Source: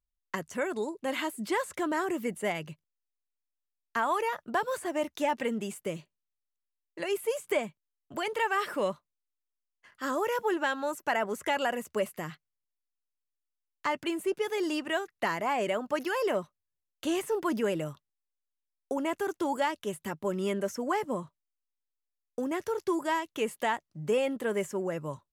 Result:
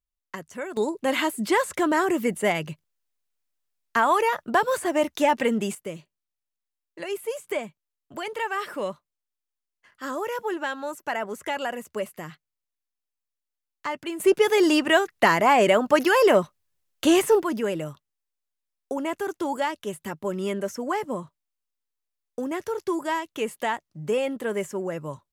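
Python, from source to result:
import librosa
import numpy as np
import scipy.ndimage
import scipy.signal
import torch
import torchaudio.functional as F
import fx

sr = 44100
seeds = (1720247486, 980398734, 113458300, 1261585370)

y = fx.gain(x, sr, db=fx.steps((0.0, -2.0), (0.77, 8.0), (5.75, 0.0), (14.2, 11.5), (17.42, 2.5)))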